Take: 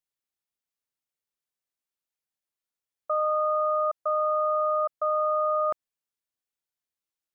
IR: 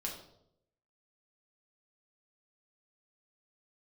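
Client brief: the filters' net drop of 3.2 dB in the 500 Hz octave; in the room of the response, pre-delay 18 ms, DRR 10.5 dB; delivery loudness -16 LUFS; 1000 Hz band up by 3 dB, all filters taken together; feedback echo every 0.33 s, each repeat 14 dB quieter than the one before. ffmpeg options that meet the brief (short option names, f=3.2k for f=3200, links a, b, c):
-filter_complex "[0:a]equalizer=f=500:t=o:g=-6.5,equalizer=f=1k:t=o:g=5,aecho=1:1:330|660:0.2|0.0399,asplit=2[a][b];[1:a]atrim=start_sample=2205,adelay=18[c];[b][c]afir=irnorm=-1:irlink=0,volume=-11dB[d];[a][d]amix=inputs=2:normalize=0,volume=7dB"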